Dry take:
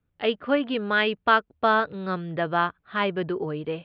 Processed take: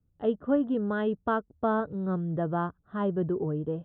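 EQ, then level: boxcar filter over 19 samples; distance through air 74 m; bass shelf 370 Hz +11.5 dB; -6.5 dB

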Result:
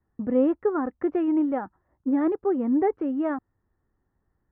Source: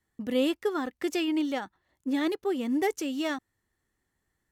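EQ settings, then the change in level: low-pass 1.4 kHz 24 dB/octave; distance through air 93 m; bass shelf 110 Hz +5.5 dB; +4.5 dB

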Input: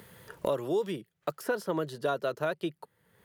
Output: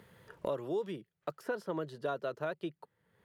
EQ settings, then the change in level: low-pass 3.5 kHz 6 dB/octave; -5.5 dB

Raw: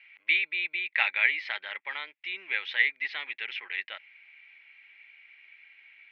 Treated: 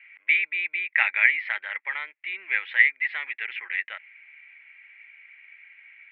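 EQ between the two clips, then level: resonant low-pass 2 kHz, resonance Q 2.2; bass shelf 220 Hz -10.5 dB; 0.0 dB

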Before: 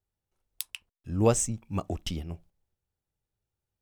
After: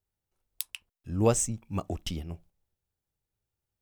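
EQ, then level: treble shelf 12 kHz +4.5 dB; -1.0 dB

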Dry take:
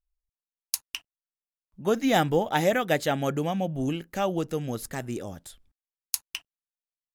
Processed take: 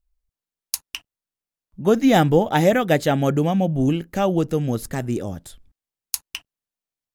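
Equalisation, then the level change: bass shelf 490 Hz +7.5 dB; +3.0 dB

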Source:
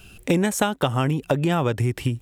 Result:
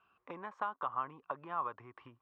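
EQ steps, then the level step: band-pass filter 1.1 kHz, Q 9.8; distance through air 200 m; +1.5 dB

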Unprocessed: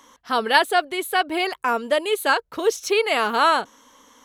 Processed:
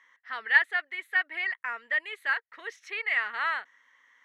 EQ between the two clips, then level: band-pass filter 1.9 kHz, Q 12; +7.5 dB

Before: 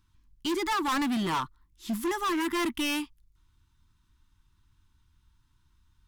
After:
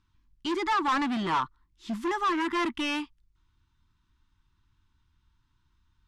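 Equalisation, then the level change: dynamic bell 1.1 kHz, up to +4 dB, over -39 dBFS, Q 0.8; distance through air 90 m; bass shelf 190 Hz -4 dB; 0.0 dB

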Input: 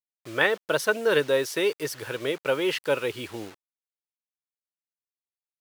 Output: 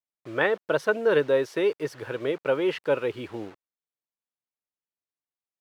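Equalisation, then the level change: low-pass 1.2 kHz 6 dB/octave; bass shelf 62 Hz -8.5 dB; +2.0 dB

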